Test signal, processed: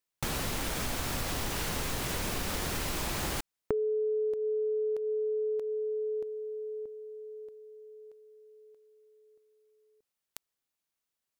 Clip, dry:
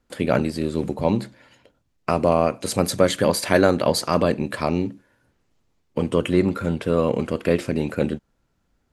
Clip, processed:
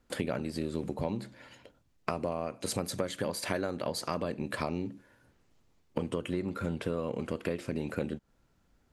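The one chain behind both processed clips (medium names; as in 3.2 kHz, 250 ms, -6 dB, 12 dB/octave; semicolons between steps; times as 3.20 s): compression 10:1, threshold -29 dBFS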